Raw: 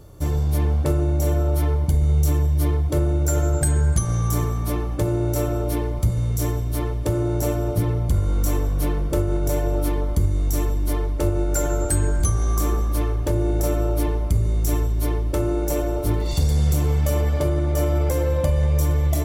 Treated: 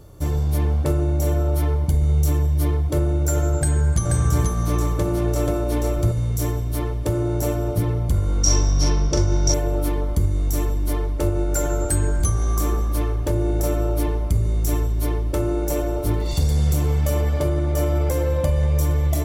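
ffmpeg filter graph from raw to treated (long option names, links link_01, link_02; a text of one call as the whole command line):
ffmpeg -i in.wav -filter_complex "[0:a]asettb=1/sr,asplit=3[link_01][link_02][link_03];[link_01]atrim=end=3.574[link_04];[link_02]atrim=start=3.57:end=6.12,asetpts=PTS-STARTPTS,afade=type=in:duration=0.004:curve=qsin,afade=type=out:start_time=2.546:duration=0.004:curve=qsin,acrossover=split=9700[link_05][link_06];[link_06]acompressor=threshold=-42dB:ratio=4:attack=1:release=60[link_07];[link_05][link_07]amix=inputs=2:normalize=0,aecho=1:1:483:0.708,atrim=end_sample=112455[link_08];[link_03]atrim=start=6.116[link_09];[link_04][link_08]acrossfade=duration=0.004:curve1=hsin:curve2=qsin[link_10];[link_10][link_09]acrossfade=duration=0.004:curve1=qsin:curve2=hsin,asettb=1/sr,asplit=3[link_11][link_12][link_13];[link_11]atrim=end=8.434[link_14];[link_12]atrim=start=8.43:end=9.54,asetpts=PTS-STARTPTS,afade=type=in:duration=0.004:curve=qsin,afade=type=out:start_time=1.106:duration=0.004:curve=qsin,lowpass=frequency=5600:width_type=q:width=13,asplit=2[link_15][link_16];[link_16]adelay=42,volume=-4.5dB[link_17];[link_15][link_17]amix=inputs=2:normalize=0,atrim=end_sample=48951[link_18];[link_13]atrim=start=9.536[link_19];[link_14][link_18]acrossfade=duration=0.004:curve1=hsin:curve2=qsin[link_20];[link_20][link_19]acrossfade=duration=0.004:curve1=qsin:curve2=hsin" out.wav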